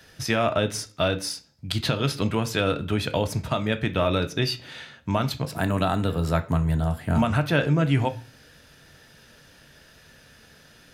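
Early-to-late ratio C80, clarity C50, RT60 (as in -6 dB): 22.0 dB, 17.0 dB, 0.40 s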